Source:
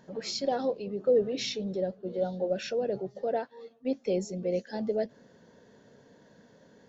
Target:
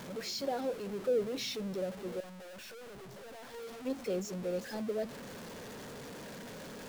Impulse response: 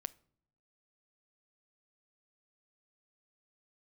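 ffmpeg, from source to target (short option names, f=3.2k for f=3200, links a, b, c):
-filter_complex "[0:a]aeval=exprs='val(0)+0.5*0.0211*sgn(val(0))':c=same,asettb=1/sr,asplit=3[a][b][c];[a]atrim=end=2.204[d];[b]atrim=start=2.2:end=3.54,asetpts=PTS-STARTPTS,afade=t=in:d=0.004:c=qsin,afade=t=out:st=1.336:d=0.004:c=qsin,aeval=exprs='(tanh(112*val(0)+0.25)-tanh(0.25))/112':c=same[e];[c]atrim=start=3.536[f];[d][e]acrossfade=d=0.004:c1=hsin:c2=qsin[g];[g][f]acrossfade=d=0.004:c1=qsin:c2=hsin,volume=-7.5dB"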